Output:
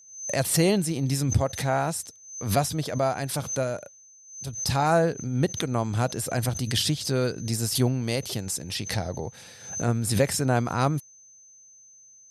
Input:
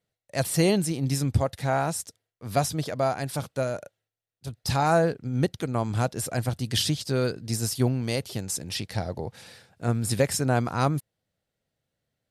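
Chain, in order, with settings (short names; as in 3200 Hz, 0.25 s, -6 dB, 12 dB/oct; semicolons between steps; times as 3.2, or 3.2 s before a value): whine 6200 Hz -50 dBFS; backwards sustainer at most 90 dB/s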